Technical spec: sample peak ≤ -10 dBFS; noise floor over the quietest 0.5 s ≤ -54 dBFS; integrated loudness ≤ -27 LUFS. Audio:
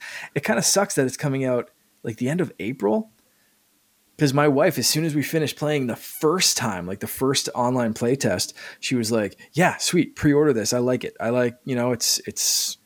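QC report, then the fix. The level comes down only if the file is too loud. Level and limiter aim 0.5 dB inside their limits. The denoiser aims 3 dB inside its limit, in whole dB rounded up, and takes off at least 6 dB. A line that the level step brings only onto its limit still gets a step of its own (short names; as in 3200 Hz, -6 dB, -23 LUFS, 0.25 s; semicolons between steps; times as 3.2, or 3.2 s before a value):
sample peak -5.0 dBFS: fail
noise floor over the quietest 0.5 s -63 dBFS: OK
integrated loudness -22.0 LUFS: fail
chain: gain -5.5 dB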